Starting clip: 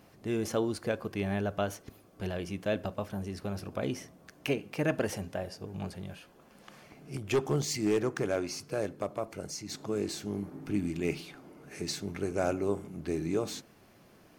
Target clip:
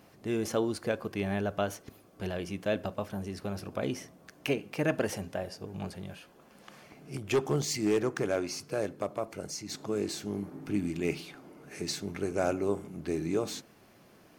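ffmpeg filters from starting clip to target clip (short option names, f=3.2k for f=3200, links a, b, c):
-af "lowshelf=f=84:g=-6,volume=1dB"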